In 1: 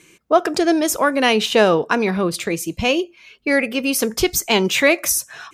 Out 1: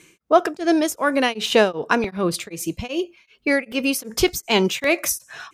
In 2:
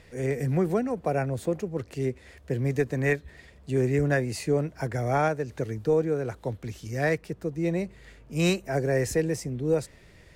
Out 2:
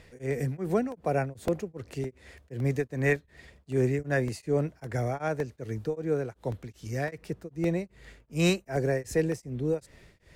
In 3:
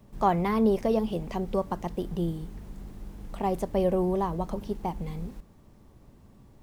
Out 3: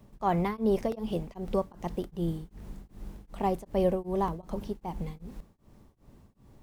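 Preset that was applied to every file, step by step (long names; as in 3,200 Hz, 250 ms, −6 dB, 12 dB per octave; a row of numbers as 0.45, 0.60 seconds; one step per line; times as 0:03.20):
regular buffer underruns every 0.56 s, samples 64, repeat, from 0:00.92
tremolo along a rectified sine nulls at 2.6 Hz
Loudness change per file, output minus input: −3.0, −2.5, −3.0 LU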